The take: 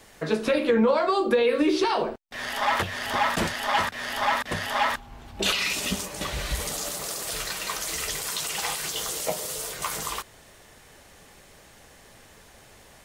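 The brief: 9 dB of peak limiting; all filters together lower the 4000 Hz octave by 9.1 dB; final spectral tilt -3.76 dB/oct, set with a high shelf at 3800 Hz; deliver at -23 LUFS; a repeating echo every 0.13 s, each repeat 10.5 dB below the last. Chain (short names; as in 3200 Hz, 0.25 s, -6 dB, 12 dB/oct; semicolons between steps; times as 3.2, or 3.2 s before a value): high shelf 3800 Hz -7 dB; bell 4000 Hz -8 dB; limiter -20 dBFS; feedback echo 0.13 s, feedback 30%, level -10.5 dB; gain +8 dB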